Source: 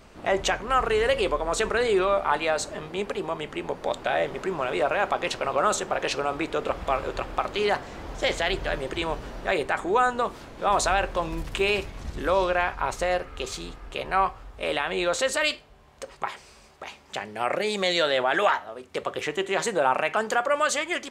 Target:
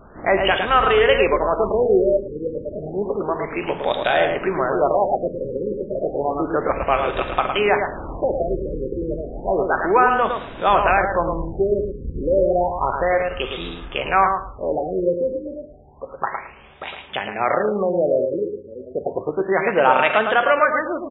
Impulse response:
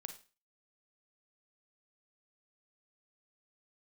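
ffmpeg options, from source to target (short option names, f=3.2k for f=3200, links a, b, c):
-filter_complex "[0:a]aecho=1:1:109|218|327:0.501|0.0852|0.0145,asplit=2[a][b];[1:a]atrim=start_sample=2205,highshelf=f=3.1k:g=11.5[c];[b][c]afir=irnorm=-1:irlink=0,volume=4.5dB[d];[a][d]amix=inputs=2:normalize=0,afftfilt=real='re*lt(b*sr/1024,540*pow(3900/540,0.5+0.5*sin(2*PI*0.31*pts/sr)))':imag='im*lt(b*sr/1024,540*pow(3900/540,0.5+0.5*sin(2*PI*0.31*pts/sr)))':win_size=1024:overlap=0.75"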